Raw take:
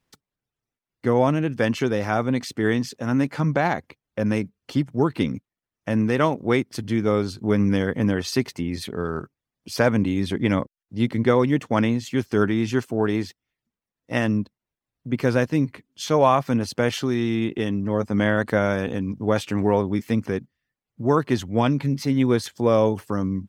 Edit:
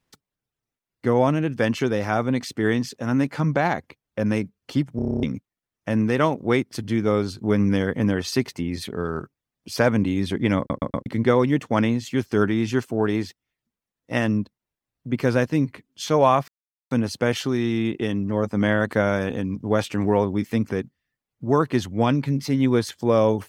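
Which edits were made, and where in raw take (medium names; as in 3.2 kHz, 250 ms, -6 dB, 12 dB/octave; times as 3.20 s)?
4.96 s: stutter in place 0.03 s, 9 plays
10.58 s: stutter in place 0.12 s, 4 plays
16.48 s: insert silence 0.43 s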